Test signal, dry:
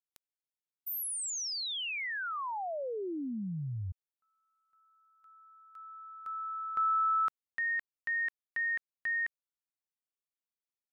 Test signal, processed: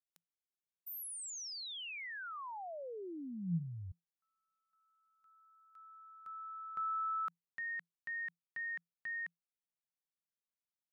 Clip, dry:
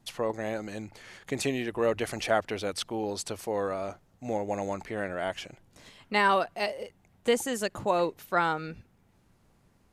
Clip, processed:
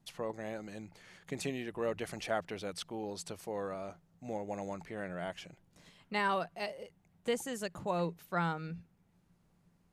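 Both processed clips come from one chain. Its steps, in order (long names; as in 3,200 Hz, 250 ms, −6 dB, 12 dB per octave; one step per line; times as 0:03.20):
parametric band 170 Hz +14.5 dB 0.21 octaves
level −8.5 dB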